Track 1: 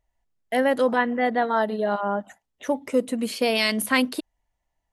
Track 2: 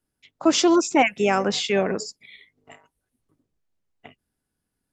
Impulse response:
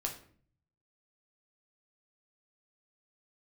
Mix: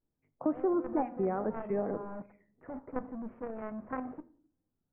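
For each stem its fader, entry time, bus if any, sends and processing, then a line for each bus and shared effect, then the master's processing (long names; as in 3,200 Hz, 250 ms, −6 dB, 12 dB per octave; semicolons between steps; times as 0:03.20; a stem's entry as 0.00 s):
−16.0 dB, 0.00 s, send −8 dB, log-companded quantiser 2 bits
−6.0 dB, 0.00 s, send −9.5 dB, tape wow and flutter 130 cents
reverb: on, RT60 0.50 s, pre-delay 6 ms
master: Gaussian smoothing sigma 7.4 samples; downward compressor 2 to 1, threshold −32 dBFS, peak gain reduction 8.5 dB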